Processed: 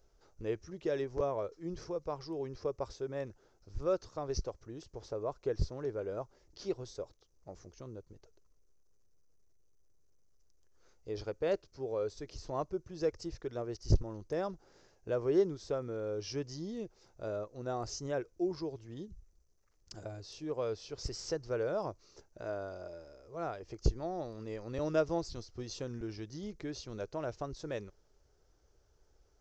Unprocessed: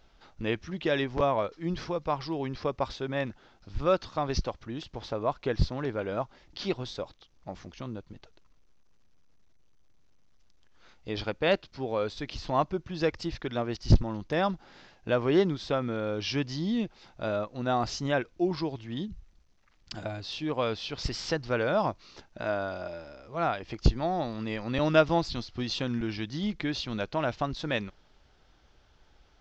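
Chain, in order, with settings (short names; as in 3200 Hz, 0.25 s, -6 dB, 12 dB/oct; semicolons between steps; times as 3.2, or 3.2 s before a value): EQ curve 100 Hz 0 dB, 240 Hz -8 dB, 420 Hz +5 dB, 790 Hz -6 dB, 1300 Hz -6 dB, 2100 Hz -10 dB, 3500 Hz -13 dB, 6100 Hz +5 dB; gain -6.5 dB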